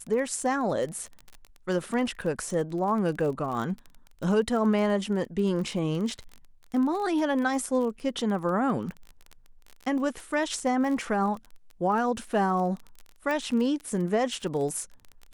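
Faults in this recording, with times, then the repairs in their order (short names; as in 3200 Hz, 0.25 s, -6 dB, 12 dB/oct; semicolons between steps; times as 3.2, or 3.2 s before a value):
crackle 25/s -33 dBFS
13.31 pop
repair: de-click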